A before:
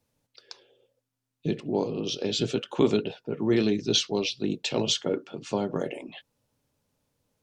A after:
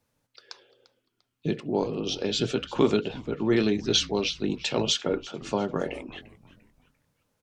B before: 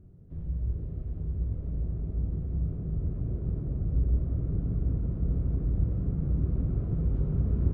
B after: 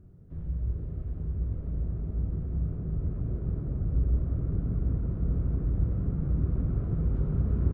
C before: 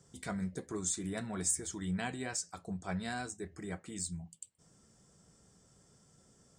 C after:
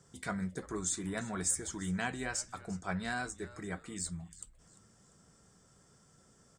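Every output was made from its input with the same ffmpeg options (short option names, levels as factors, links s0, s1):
-filter_complex "[0:a]equalizer=f=1400:t=o:w=1.2:g=5.5,asplit=4[s0][s1][s2][s3];[s1]adelay=346,afreqshift=-140,volume=0.119[s4];[s2]adelay=692,afreqshift=-280,volume=0.0442[s5];[s3]adelay=1038,afreqshift=-420,volume=0.0162[s6];[s0][s4][s5][s6]amix=inputs=4:normalize=0"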